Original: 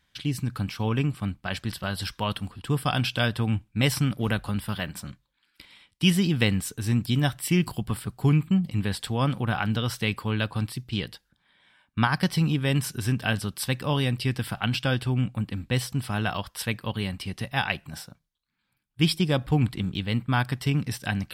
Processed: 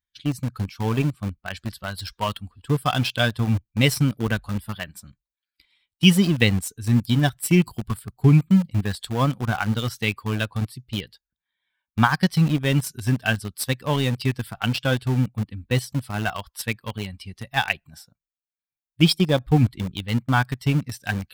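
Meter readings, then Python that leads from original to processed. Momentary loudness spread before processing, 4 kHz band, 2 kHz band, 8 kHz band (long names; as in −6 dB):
8 LU, +3.0 dB, +3.5 dB, +2.5 dB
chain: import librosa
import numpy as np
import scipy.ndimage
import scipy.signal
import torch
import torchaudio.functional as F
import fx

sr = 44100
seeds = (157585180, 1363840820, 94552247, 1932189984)

p1 = fx.bin_expand(x, sr, power=1.5)
p2 = np.where(np.abs(p1) >= 10.0 ** (-28.5 / 20.0), p1, 0.0)
p3 = p1 + (p2 * librosa.db_to_amplitude(-4.0))
y = p3 * librosa.db_to_amplitude(3.0)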